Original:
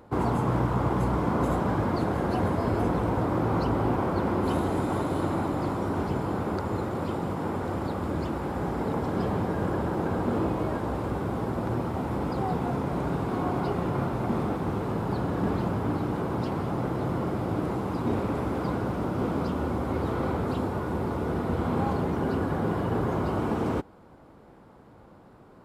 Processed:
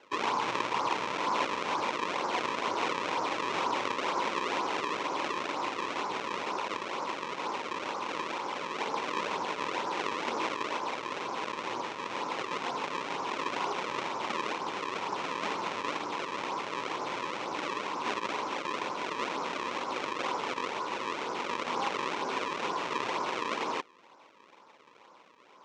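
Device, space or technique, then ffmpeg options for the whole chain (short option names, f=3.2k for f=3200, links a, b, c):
circuit-bent sampling toy: -af "acrusher=samples=35:mix=1:aa=0.000001:lfo=1:lforange=56:lforate=2.1,highpass=590,equalizer=f=700:t=q:w=4:g=-6,equalizer=f=1k:t=q:w=4:g=8,equalizer=f=1.6k:t=q:w=4:g=-3,equalizer=f=2.4k:t=q:w=4:g=4,equalizer=f=4.7k:t=q:w=4:g=-5,lowpass=f=5.8k:w=0.5412,lowpass=f=5.8k:w=1.3066"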